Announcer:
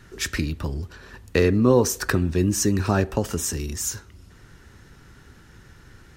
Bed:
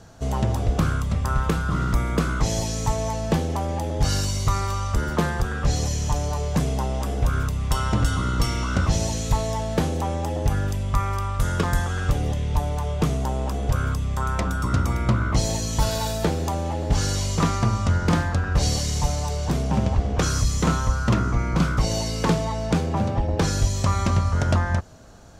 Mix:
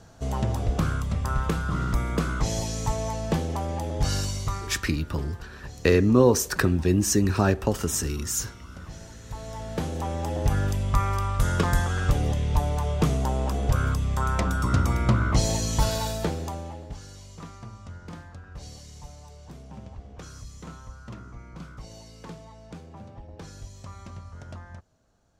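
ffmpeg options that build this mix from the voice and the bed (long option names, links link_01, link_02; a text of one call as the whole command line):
ffmpeg -i stem1.wav -i stem2.wav -filter_complex "[0:a]adelay=4500,volume=-0.5dB[link_01];[1:a]volume=16dB,afade=type=out:start_time=4.21:duration=0.68:silence=0.149624,afade=type=in:start_time=9.23:duration=1.4:silence=0.105925,afade=type=out:start_time=15.7:duration=1.29:silence=0.1[link_02];[link_01][link_02]amix=inputs=2:normalize=0" out.wav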